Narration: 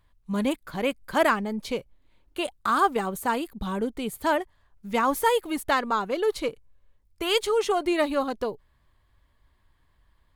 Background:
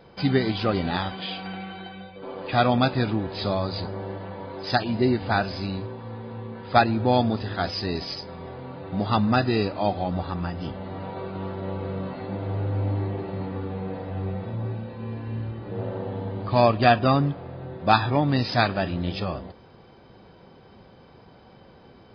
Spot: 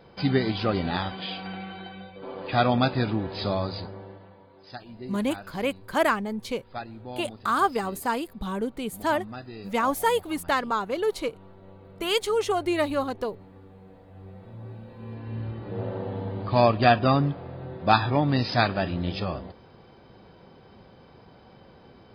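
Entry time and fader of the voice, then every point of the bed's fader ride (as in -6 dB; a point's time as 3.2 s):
4.80 s, -1.0 dB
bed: 3.63 s -1.5 dB
4.49 s -18 dB
14.02 s -18 dB
15.5 s -1 dB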